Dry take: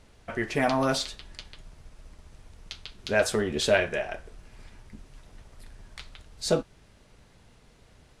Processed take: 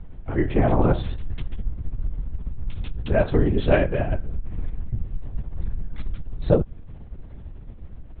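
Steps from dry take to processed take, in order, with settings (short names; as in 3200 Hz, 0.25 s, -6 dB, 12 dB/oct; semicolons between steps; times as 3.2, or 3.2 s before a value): tilt -4.5 dB/oct; LPC vocoder at 8 kHz whisper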